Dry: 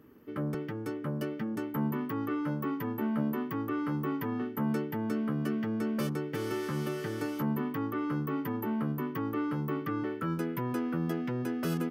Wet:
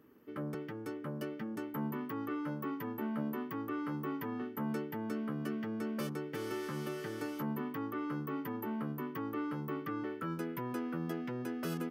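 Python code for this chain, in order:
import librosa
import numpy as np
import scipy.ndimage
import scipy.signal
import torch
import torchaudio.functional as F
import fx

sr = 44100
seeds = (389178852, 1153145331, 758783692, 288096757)

y = fx.low_shelf(x, sr, hz=130.0, db=-9.0)
y = y * librosa.db_to_amplitude(-4.0)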